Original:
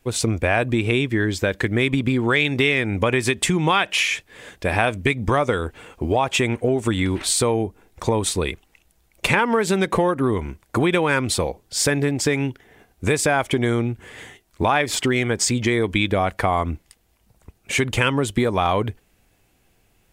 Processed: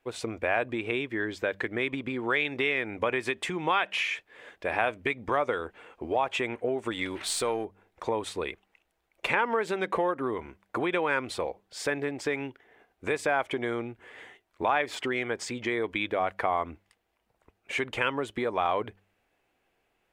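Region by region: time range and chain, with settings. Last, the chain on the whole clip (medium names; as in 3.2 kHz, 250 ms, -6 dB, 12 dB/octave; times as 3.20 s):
6.91–7.65 s: partial rectifier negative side -3 dB + treble shelf 3 kHz +10.5 dB
whole clip: tone controls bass -15 dB, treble -14 dB; de-hum 97.87 Hz, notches 2; trim -6 dB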